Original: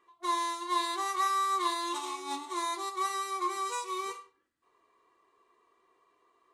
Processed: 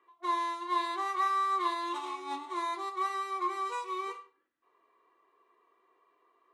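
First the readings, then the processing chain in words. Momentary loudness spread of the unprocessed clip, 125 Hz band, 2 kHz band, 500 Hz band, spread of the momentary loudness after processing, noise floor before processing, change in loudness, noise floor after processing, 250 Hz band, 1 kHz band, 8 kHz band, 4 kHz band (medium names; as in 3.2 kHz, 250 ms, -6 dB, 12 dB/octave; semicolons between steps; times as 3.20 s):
8 LU, no reading, -0.5 dB, -1.0 dB, 9 LU, -73 dBFS, -0.5 dB, -73 dBFS, -1.0 dB, 0.0 dB, -12.5 dB, -6.0 dB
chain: three-band isolator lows -14 dB, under 230 Hz, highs -14 dB, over 3.4 kHz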